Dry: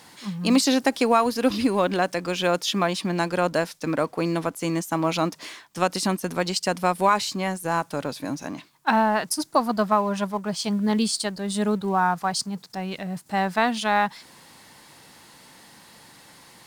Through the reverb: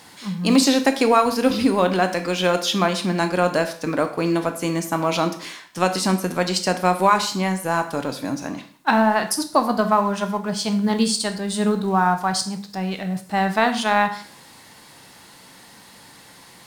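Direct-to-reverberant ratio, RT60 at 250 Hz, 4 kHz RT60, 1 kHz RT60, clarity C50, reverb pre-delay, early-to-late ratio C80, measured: 7.0 dB, 0.50 s, 0.45 s, 0.50 s, 11.0 dB, 7 ms, 14.5 dB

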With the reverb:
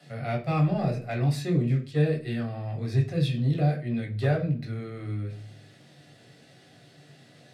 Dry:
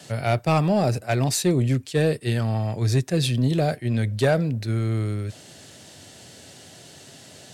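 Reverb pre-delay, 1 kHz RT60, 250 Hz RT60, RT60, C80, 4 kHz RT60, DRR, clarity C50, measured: 3 ms, 0.40 s, 0.65 s, 0.40 s, 17.0 dB, 0.60 s, -1.5 dB, 10.5 dB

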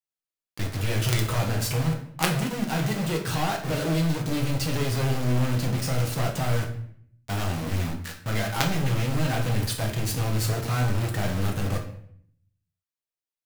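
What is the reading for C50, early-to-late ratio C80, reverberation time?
8.5 dB, 11.5 dB, 0.65 s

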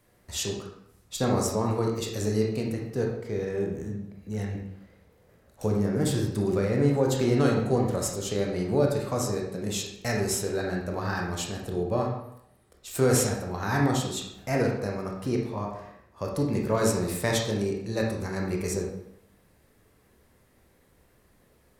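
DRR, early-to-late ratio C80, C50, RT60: -1.0 dB, 7.5 dB, 3.0 dB, 0.75 s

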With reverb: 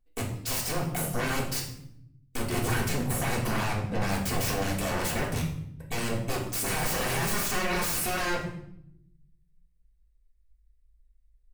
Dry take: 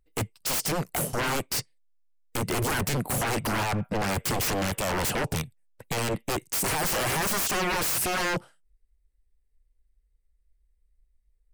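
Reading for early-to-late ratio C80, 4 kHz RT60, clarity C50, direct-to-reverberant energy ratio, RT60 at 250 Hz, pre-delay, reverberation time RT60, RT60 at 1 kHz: 9.5 dB, 0.55 s, 6.0 dB, -3.5 dB, 1.3 s, 3 ms, 0.70 s, 0.65 s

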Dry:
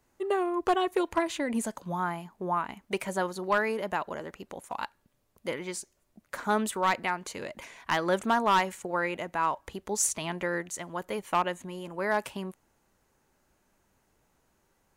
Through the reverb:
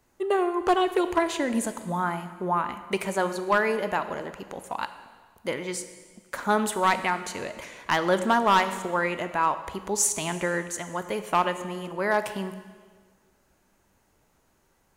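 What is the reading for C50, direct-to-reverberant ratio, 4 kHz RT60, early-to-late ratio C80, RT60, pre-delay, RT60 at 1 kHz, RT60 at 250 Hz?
11.0 dB, 10.0 dB, 1.5 s, 12.0 dB, 1.6 s, 15 ms, 1.5 s, 1.6 s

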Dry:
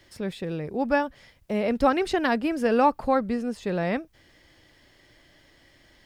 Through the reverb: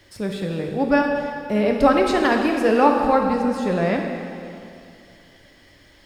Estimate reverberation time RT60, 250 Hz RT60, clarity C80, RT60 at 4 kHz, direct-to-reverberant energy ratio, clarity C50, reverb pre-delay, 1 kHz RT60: 2.5 s, 2.4 s, 4.5 dB, 2.3 s, 2.0 dB, 3.5 dB, 4 ms, 2.5 s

